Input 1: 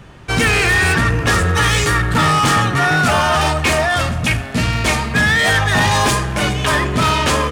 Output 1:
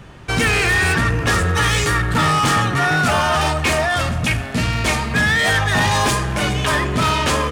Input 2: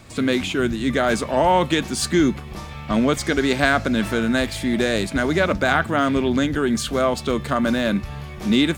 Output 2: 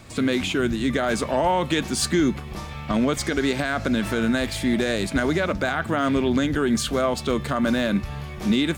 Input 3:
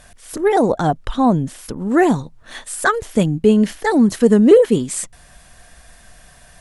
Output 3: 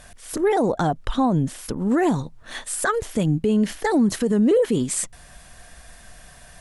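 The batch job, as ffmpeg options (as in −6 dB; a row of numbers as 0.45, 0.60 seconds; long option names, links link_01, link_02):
-af "alimiter=limit=-12dB:level=0:latency=1:release=84"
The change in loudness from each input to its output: −2.0, −2.5, −6.0 LU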